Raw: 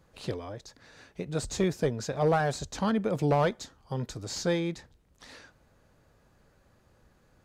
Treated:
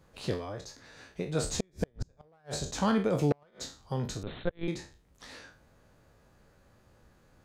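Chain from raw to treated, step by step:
peak hold with a decay on every bin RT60 0.36 s
0:01.53–0:02.27: wind on the microphone 99 Hz −30 dBFS
gate with flip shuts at −16 dBFS, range −39 dB
0:04.23–0:04.68: linear-prediction vocoder at 8 kHz pitch kept

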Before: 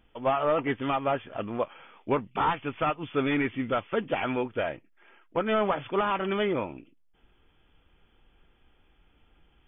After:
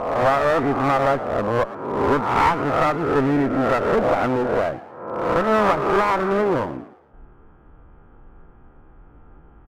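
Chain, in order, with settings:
peak hold with a rise ahead of every peak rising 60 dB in 0.86 s
Chebyshev low-pass filter 1,300 Hz, order 3
in parallel at −3 dB: downward compressor, threshold −40 dBFS, peak gain reduction 19 dB
on the sum: asymmetric clip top −30 dBFS
echo with shifted repeats 114 ms, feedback 42%, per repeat +88 Hz, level −17 dB
level +9 dB

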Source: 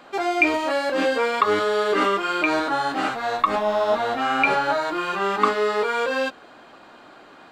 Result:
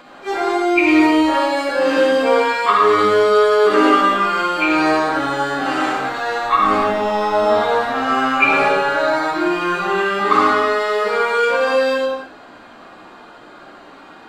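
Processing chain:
low-shelf EQ 72 Hz +6 dB
time stretch by phase vocoder 1.9×
convolution reverb, pre-delay 38 ms, DRR −1.5 dB
level +4.5 dB

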